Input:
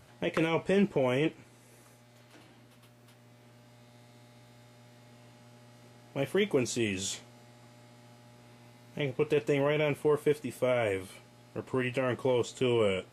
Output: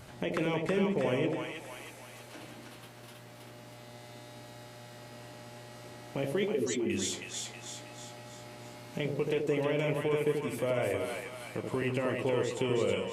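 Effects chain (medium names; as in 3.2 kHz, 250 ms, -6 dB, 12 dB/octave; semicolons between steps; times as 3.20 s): 6.50–6.90 s: spectral contrast enhancement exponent 2.6; compression 2:1, threshold -45 dBFS, peak gain reduction 13 dB; two-band feedback delay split 710 Hz, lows 80 ms, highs 320 ms, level -3 dB; trim +7 dB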